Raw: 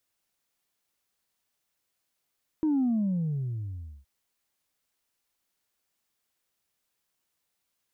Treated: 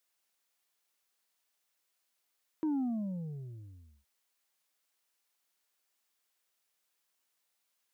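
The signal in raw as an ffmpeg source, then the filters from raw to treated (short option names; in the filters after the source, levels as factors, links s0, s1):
-f lavfi -i "aevalsrc='0.075*clip((1.42-t)/1.24,0,1)*tanh(1*sin(2*PI*320*1.42/log(65/320)*(exp(log(65/320)*t/1.42)-1)))/tanh(1)':d=1.42:s=44100"
-af "highpass=f=530:p=1"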